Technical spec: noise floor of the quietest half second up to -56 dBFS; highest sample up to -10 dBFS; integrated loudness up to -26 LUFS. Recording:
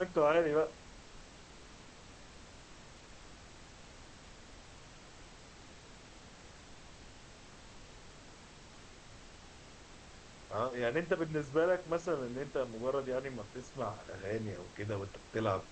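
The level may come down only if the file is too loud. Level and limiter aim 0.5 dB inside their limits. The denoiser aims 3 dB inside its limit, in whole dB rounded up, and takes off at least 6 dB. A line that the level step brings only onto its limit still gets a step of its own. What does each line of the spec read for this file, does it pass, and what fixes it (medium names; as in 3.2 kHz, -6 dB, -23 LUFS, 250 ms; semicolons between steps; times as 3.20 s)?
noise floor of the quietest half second -54 dBFS: fail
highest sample -19.5 dBFS: pass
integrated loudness -35.5 LUFS: pass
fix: noise reduction 6 dB, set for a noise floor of -54 dBFS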